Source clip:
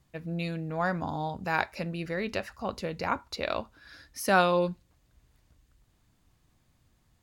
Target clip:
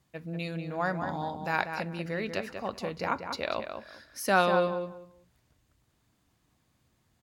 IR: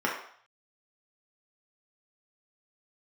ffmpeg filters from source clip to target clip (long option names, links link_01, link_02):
-filter_complex "[0:a]highpass=frequency=130:poles=1,asplit=2[link_01][link_02];[link_02]adelay=191,lowpass=frequency=2500:poles=1,volume=-6.5dB,asplit=2[link_03][link_04];[link_04]adelay=191,lowpass=frequency=2500:poles=1,volume=0.21,asplit=2[link_05][link_06];[link_06]adelay=191,lowpass=frequency=2500:poles=1,volume=0.21[link_07];[link_03][link_05][link_07]amix=inputs=3:normalize=0[link_08];[link_01][link_08]amix=inputs=2:normalize=0,volume=-1dB"